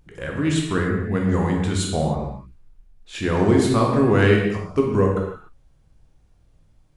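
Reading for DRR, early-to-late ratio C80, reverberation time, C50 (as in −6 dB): −0.5 dB, 4.5 dB, non-exponential decay, 2.5 dB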